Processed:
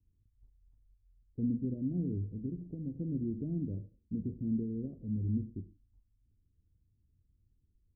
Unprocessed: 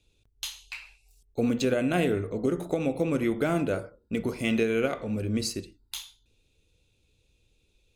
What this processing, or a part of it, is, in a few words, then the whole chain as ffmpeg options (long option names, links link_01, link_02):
the neighbour's flat through the wall: -filter_complex "[0:a]asettb=1/sr,asplit=3[link_01][link_02][link_03];[link_01]atrim=end=2.194[link_04];[link_02]atrim=start=2.19:end=2.99,asetpts=PTS-STARTPTS,afade=type=in:duration=0.004:curve=qsin,afade=type=out:start_time=0.796:duration=0.004:curve=qsin,equalizer=frequency=410:width_type=o:width=2.1:gain=-4[link_05];[link_03]atrim=start=2.986[link_06];[link_04][link_05]acrossfade=duration=0.004:curve1=hsin:curve2=qsin[link_07];[link_07][link_06]acrossfade=duration=0.004:curve1=qsin:curve2=hsin,lowpass=frequency=270:width=0.5412,lowpass=frequency=270:width=1.3066,equalizer=frequency=89:width_type=o:width=0.75:gain=5,volume=-4.5dB"